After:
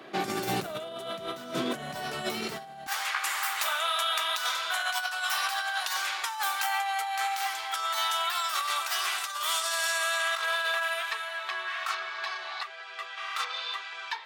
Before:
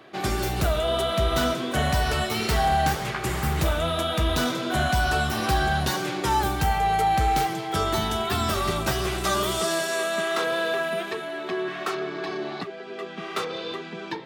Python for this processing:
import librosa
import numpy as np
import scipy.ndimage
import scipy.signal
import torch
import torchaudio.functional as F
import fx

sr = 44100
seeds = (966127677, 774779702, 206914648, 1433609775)

y = fx.highpass(x, sr, hz=fx.steps((0.0, 150.0), (2.87, 950.0)), slope=24)
y = fx.over_compress(y, sr, threshold_db=-30.0, ratio=-0.5)